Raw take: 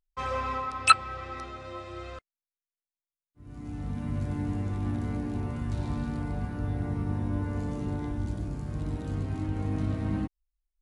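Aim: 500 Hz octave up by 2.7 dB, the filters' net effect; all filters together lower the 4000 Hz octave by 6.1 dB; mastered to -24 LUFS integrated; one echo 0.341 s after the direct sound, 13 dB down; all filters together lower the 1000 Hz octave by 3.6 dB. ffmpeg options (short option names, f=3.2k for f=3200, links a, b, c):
-af "equalizer=f=500:t=o:g=4.5,equalizer=f=1k:t=o:g=-5.5,equalizer=f=4k:t=o:g=-6.5,aecho=1:1:341:0.224,volume=8dB"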